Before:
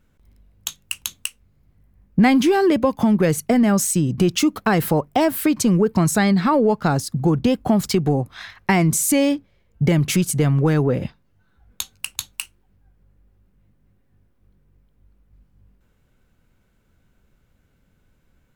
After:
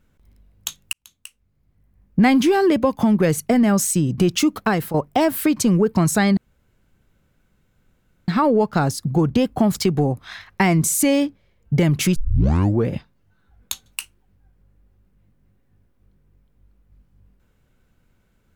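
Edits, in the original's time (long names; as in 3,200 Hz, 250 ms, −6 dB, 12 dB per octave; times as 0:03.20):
0:00.93–0:02.29: fade in
0:04.65–0:04.94: fade out, to −12 dB
0:06.37: splice in room tone 1.91 s
0:10.25: tape start 0.73 s
0:11.95–0:12.27: remove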